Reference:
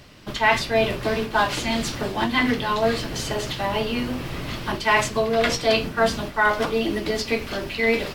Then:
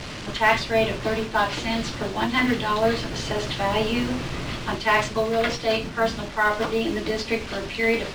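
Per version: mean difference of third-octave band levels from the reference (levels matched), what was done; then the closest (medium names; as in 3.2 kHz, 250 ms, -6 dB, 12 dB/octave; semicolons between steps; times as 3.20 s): 2.0 dB: one-bit delta coder 64 kbps, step -28.5 dBFS; low-pass 5.4 kHz 12 dB/octave; gain riding within 5 dB 2 s; short-mantissa float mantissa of 4-bit; trim -1.5 dB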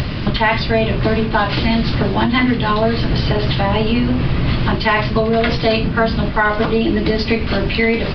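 7.5 dB: upward compressor, threshold -23 dBFS; tone controls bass +9 dB, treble -2 dB; resampled via 11.025 kHz; compression, threshold -20 dBFS, peak gain reduction 7.5 dB; trim +8.5 dB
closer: first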